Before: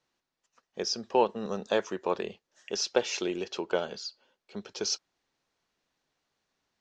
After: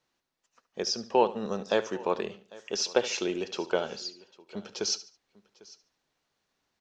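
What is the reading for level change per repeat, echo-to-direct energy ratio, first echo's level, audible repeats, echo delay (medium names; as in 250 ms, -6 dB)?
no regular repeats, -14.5 dB, -16.0 dB, 3, 72 ms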